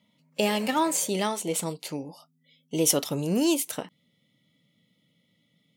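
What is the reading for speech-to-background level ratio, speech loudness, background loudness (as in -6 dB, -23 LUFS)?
19.0 dB, -27.0 LUFS, -46.0 LUFS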